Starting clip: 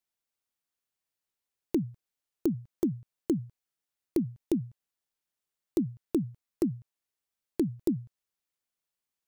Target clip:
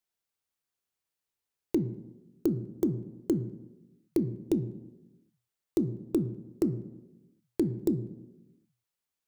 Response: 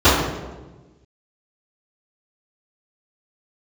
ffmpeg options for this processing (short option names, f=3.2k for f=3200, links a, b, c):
-filter_complex "[0:a]asplit=2[a][b];[1:a]atrim=start_sample=2205,asetrate=57330,aresample=44100[c];[b][c]afir=irnorm=-1:irlink=0,volume=-36.5dB[d];[a][d]amix=inputs=2:normalize=0"